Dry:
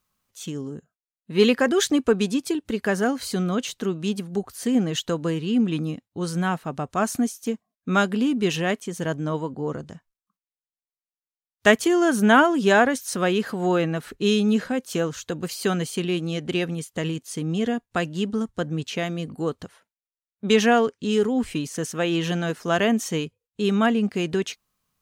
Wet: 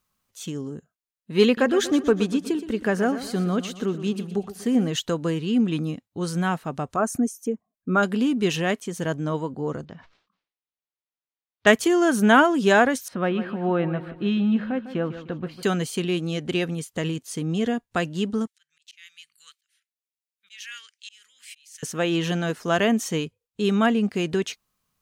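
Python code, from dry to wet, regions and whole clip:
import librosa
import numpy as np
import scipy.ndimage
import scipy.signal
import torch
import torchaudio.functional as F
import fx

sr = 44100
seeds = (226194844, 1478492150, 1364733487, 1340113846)

y = fx.chain(x, sr, fx.high_shelf(hz=3100.0, db=-6.5),
    fx.echo_feedback(ms=121, feedback_pct=48, wet_db=-13.0), at=(1.45, 4.88))
y = fx.chain(y, sr, fx.envelope_sharpen(power=1.5),
    fx.peak_eq(hz=3800.0, db=-9.5, octaves=0.92), at=(6.96, 8.03))
y = fx.chain(y, sr, fx.lowpass(hz=4300.0, slope=24),
    fx.low_shelf(hz=82.0, db=-9.5),
    fx.sustainer(db_per_s=120.0), at=(9.85, 11.67))
y = fx.chain(y, sr, fx.air_absorb(metres=450.0),
    fx.notch(hz=430.0, q=5.3),
    fx.echo_feedback(ms=152, feedback_pct=40, wet_db=-12.5), at=(13.08, 15.63))
y = fx.chain(y, sr, fx.cheby2_highpass(hz=780.0, order=4, stop_db=50),
    fx.auto_swell(attack_ms=473.0), at=(18.47, 21.83))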